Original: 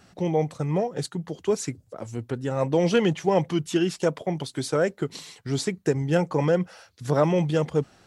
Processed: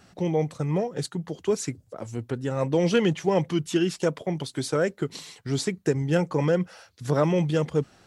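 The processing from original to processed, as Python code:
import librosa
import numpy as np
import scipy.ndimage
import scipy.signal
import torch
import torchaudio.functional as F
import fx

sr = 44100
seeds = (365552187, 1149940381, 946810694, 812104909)

y = fx.dynamic_eq(x, sr, hz=750.0, q=1.8, threshold_db=-36.0, ratio=4.0, max_db=-4)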